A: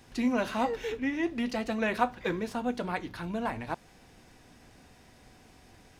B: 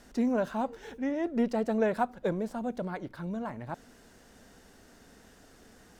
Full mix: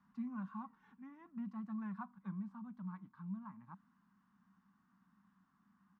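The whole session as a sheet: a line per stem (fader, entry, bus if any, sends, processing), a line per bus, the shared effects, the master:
-8.0 dB, 0.00 s, no send, auto duck -12 dB, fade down 0.60 s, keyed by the second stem
-4.5 dB, 0.4 ms, no send, peaking EQ 600 Hz -12 dB 0.5 oct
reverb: none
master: two resonant band-passes 460 Hz, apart 2.5 oct

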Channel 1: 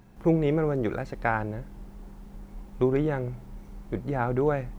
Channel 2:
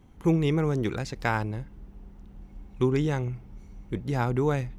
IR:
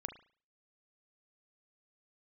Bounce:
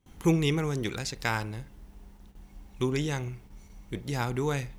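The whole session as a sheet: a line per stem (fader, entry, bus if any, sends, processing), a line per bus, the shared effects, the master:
-15.0 dB, 0.00 s, no send, none
+2.0 dB, 0.00 s, polarity flipped, send -14.5 dB, auto duck -7 dB, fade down 0.70 s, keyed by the first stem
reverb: on, pre-delay 35 ms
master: gate with hold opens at -43 dBFS; treble shelf 2.3 kHz +11.5 dB

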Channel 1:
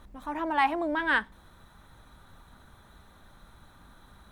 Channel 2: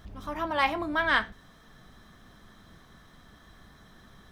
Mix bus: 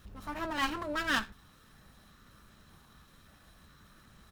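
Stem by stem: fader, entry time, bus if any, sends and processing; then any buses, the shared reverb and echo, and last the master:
-7.0 dB, 0.00 s, no send, high-pass 71 Hz; comb 1.6 ms, depth 41%; stepped phaser 5.2 Hz 220–4200 Hz
-5.0 dB, 0.4 ms, no send, comb filter that takes the minimum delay 0.72 ms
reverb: none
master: treble shelf 7 kHz +6 dB

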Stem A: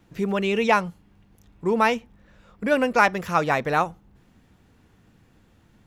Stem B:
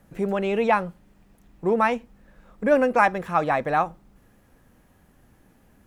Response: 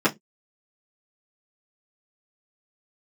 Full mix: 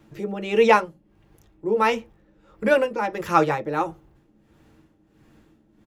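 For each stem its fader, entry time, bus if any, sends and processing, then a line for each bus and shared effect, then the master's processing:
+1.0 dB, 0.00 s, send -22 dB, tremolo 1.5 Hz, depth 85%
-8.5 dB, 1.8 ms, send -16.5 dB, Bessel low-pass 610 Hz, order 4; peaking EQ 320 Hz +5.5 dB 0.4 oct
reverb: on, pre-delay 3 ms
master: none

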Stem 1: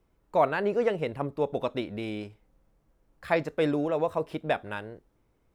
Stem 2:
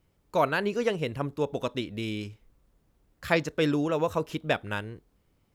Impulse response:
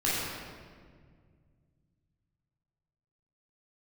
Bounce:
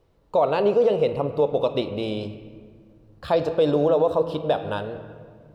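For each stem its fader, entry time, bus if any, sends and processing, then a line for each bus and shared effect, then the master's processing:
-0.5 dB, 0.00 s, send -24 dB, graphic EQ 500/1000/2000/4000 Hz +12/+3/-4/+11 dB
0.0 dB, 0.00 s, send -13.5 dB, low-pass 3 kHz 24 dB/octave; compression 2:1, threshold -40 dBFS, peak gain reduction 12 dB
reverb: on, RT60 1.9 s, pre-delay 13 ms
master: peaking EQ 2.2 kHz -3 dB 0.39 oct; peak limiter -11 dBFS, peak gain reduction 8.5 dB

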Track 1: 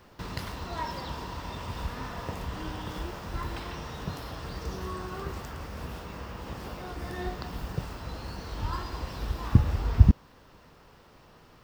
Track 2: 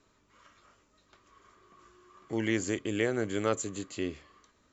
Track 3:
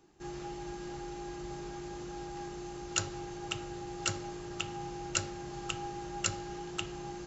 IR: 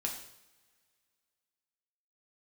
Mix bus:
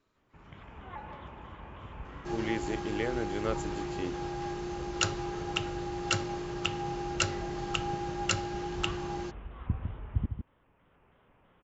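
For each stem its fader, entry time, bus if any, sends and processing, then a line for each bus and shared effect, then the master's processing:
-19.0 dB, 0.15 s, no send, echo send -7.5 dB, steep low-pass 3.2 kHz 96 dB/octave; level rider gain up to 6 dB; vibrato with a chosen wave square 3.1 Hz, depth 160 cents
-7.5 dB, 0.00 s, no send, no echo send, none
+2.0 dB, 2.05 s, no send, no echo send, none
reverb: none
echo: delay 154 ms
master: low-pass 5.1 kHz 12 dB/octave; level rider gain up to 3.5 dB

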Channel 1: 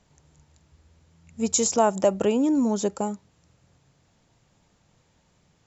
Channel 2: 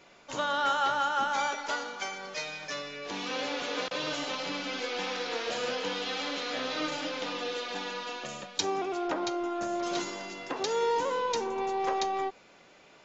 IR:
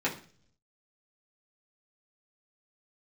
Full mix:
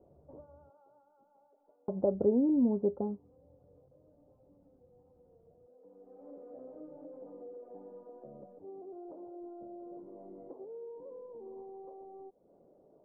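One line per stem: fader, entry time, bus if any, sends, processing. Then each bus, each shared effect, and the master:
-1.0 dB, 0.00 s, muted 0.70–1.88 s, no send, treble shelf 2.3 kHz +11 dB; band-stop 620 Hz, Q 16; feedback comb 81 Hz, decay 0.19 s, harmonics odd, mix 50%
-2.5 dB, 0.00 s, no send, resonances exaggerated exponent 1.5; compression 6:1, threshold -41 dBFS, peak gain reduction 16 dB; auto duck -16 dB, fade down 1.85 s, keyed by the first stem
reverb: none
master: inverse Chebyshev low-pass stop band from 3.7 kHz, stop band 80 dB

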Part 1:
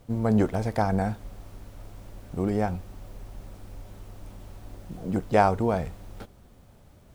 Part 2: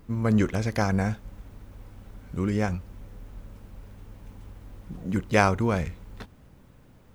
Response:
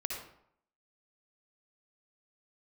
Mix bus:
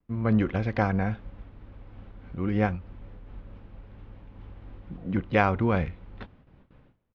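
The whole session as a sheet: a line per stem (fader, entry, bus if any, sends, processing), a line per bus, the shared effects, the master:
-10.0 dB, 0.00 s, no send, elliptic band-pass 250–1300 Hz
+2.0 dB, 5.2 ms, no send, none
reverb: none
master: low-pass 3.5 kHz 24 dB/octave; gate with hold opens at -41 dBFS; random flutter of the level, depth 50%

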